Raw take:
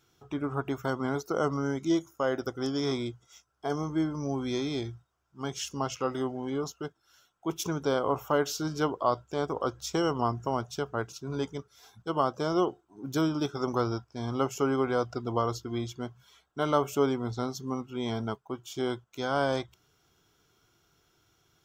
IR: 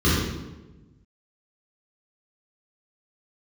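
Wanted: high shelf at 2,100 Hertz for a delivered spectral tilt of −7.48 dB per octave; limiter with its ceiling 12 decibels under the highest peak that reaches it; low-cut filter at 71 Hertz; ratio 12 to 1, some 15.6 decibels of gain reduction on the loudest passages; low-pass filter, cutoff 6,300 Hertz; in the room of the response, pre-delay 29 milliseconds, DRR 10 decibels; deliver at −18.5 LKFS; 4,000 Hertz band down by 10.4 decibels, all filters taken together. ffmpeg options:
-filter_complex "[0:a]highpass=71,lowpass=6300,highshelf=frequency=2100:gain=-4.5,equalizer=frequency=4000:width_type=o:gain=-9,acompressor=threshold=-37dB:ratio=12,alimiter=level_in=12dB:limit=-24dB:level=0:latency=1,volume=-12dB,asplit=2[link_01][link_02];[1:a]atrim=start_sample=2205,adelay=29[link_03];[link_02][link_03]afir=irnorm=-1:irlink=0,volume=-28.5dB[link_04];[link_01][link_04]amix=inputs=2:normalize=0,volume=25.5dB"

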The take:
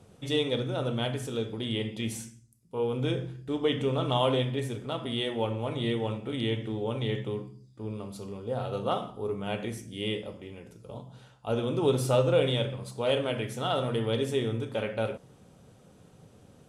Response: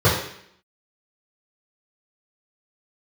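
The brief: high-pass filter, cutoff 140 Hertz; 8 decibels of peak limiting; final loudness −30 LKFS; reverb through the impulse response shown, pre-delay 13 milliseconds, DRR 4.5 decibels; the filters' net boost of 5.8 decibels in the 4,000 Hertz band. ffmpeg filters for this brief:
-filter_complex "[0:a]highpass=140,equalizer=frequency=4000:width_type=o:gain=7.5,alimiter=limit=-18.5dB:level=0:latency=1,asplit=2[link_01][link_02];[1:a]atrim=start_sample=2205,adelay=13[link_03];[link_02][link_03]afir=irnorm=-1:irlink=0,volume=-26.5dB[link_04];[link_01][link_04]amix=inputs=2:normalize=0,volume=-1.5dB"

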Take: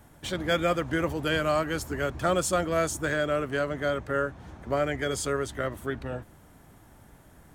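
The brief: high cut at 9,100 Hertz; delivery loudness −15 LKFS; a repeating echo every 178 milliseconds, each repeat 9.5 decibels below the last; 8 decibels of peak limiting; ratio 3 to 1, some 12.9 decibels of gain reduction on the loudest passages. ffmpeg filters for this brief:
ffmpeg -i in.wav -af "lowpass=9100,acompressor=threshold=-39dB:ratio=3,alimiter=level_in=8dB:limit=-24dB:level=0:latency=1,volume=-8dB,aecho=1:1:178|356|534|712:0.335|0.111|0.0365|0.012,volume=26.5dB" out.wav

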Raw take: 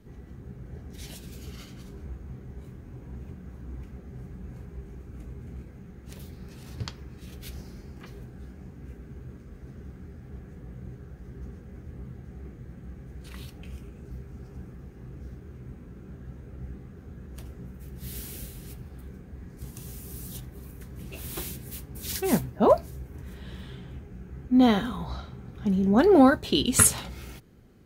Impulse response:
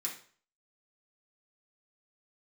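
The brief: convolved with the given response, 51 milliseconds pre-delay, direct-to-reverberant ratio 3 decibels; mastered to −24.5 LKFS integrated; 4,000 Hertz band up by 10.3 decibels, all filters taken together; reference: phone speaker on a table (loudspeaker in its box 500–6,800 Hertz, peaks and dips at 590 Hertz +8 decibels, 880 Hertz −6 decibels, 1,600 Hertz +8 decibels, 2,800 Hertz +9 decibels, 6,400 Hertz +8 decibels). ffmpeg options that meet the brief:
-filter_complex "[0:a]equalizer=frequency=4000:width_type=o:gain=7,asplit=2[link_01][link_02];[1:a]atrim=start_sample=2205,adelay=51[link_03];[link_02][link_03]afir=irnorm=-1:irlink=0,volume=-3.5dB[link_04];[link_01][link_04]amix=inputs=2:normalize=0,highpass=frequency=500:width=0.5412,highpass=frequency=500:width=1.3066,equalizer=frequency=590:width_type=q:width=4:gain=8,equalizer=frequency=880:width_type=q:width=4:gain=-6,equalizer=frequency=1600:width_type=q:width=4:gain=8,equalizer=frequency=2800:width_type=q:width=4:gain=9,equalizer=frequency=6400:width_type=q:width=4:gain=8,lowpass=frequency=6800:width=0.5412,lowpass=frequency=6800:width=1.3066,volume=-0.5dB"

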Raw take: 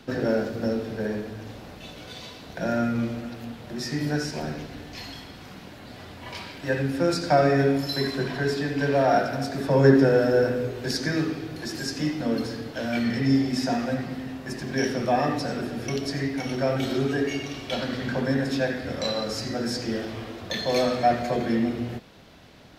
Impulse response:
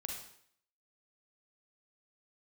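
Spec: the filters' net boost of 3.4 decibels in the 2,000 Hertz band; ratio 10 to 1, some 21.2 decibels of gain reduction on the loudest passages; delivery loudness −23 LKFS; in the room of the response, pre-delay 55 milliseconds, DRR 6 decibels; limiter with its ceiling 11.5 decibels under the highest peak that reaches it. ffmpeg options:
-filter_complex "[0:a]equalizer=frequency=2000:width_type=o:gain=4.5,acompressor=threshold=-33dB:ratio=10,alimiter=level_in=7dB:limit=-24dB:level=0:latency=1,volume=-7dB,asplit=2[link_01][link_02];[1:a]atrim=start_sample=2205,adelay=55[link_03];[link_02][link_03]afir=irnorm=-1:irlink=0,volume=-5dB[link_04];[link_01][link_04]amix=inputs=2:normalize=0,volume=15.5dB"

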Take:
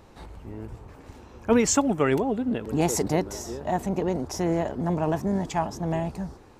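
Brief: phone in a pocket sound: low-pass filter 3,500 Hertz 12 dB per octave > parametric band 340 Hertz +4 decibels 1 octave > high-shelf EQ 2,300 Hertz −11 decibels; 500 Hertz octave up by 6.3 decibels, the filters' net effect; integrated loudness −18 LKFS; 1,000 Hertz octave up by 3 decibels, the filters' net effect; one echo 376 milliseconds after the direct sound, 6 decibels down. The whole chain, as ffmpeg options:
ffmpeg -i in.wav -af "lowpass=3500,equalizer=frequency=340:width_type=o:width=1:gain=4,equalizer=frequency=500:width_type=o:gain=5,equalizer=frequency=1000:width_type=o:gain=3,highshelf=frequency=2300:gain=-11,aecho=1:1:376:0.501,volume=3dB" out.wav

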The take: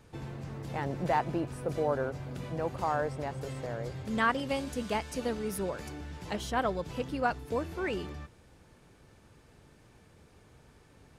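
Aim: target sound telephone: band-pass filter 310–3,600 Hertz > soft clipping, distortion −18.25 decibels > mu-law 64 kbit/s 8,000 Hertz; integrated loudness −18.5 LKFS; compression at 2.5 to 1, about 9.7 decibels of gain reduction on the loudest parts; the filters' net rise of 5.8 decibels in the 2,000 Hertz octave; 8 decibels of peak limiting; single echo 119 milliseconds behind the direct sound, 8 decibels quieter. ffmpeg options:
ffmpeg -i in.wav -af "equalizer=frequency=2000:width_type=o:gain=8,acompressor=threshold=-34dB:ratio=2.5,alimiter=level_in=4dB:limit=-24dB:level=0:latency=1,volume=-4dB,highpass=310,lowpass=3600,aecho=1:1:119:0.398,asoftclip=threshold=-31dB,volume=23.5dB" -ar 8000 -c:a pcm_mulaw out.wav

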